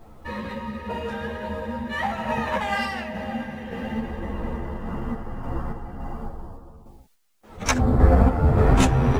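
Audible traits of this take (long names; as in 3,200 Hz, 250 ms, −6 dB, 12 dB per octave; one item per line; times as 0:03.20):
a quantiser's noise floor 12 bits, dither triangular
sample-and-hold tremolo
a shimmering, thickened sound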